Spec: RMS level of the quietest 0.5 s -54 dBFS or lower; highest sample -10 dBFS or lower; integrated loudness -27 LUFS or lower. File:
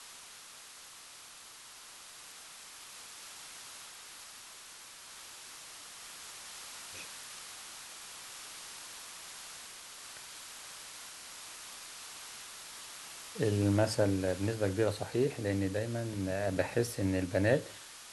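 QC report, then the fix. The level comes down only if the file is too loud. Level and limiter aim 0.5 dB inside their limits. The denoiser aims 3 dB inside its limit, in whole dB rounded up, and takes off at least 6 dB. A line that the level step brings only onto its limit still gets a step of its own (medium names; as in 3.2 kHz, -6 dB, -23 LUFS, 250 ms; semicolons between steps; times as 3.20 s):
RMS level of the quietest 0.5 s -52 dBFS: fail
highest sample -14.5 dBFS: pass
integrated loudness -36.5 LUFS: pass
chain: noise reduction 6 dB, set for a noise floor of -52 dBFS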